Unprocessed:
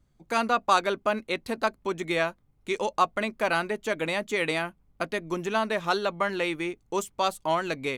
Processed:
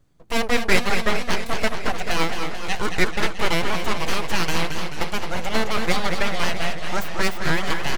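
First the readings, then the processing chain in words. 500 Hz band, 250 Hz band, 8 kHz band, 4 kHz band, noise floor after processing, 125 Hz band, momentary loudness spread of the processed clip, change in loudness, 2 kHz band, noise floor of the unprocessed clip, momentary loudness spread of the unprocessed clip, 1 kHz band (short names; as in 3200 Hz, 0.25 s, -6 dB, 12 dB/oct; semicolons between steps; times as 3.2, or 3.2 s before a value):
+0.5 dB, +5.0 dB, +9.5 dB, +8.5 dB, -28 dBFS, +10.0 dB, 6 LU, +3.5 dB, +6.0 dB, -66 dBFS, 7 LU, +0.5 dB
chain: outdoor echo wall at 38 m, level -8 dB; full-wave rectifier; warbling echo 0.217 s, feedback 73%, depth 155 cents, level -9 dB; gain +6 dB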